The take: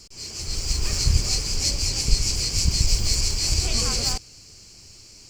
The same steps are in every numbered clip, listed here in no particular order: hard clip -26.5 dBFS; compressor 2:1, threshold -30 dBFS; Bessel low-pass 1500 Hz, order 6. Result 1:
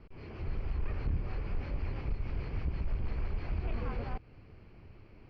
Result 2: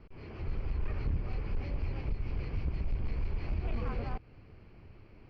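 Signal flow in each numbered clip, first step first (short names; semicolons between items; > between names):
compressor > hard clip > Bessel low-pass; compressor > Bessel low-pass > hard clip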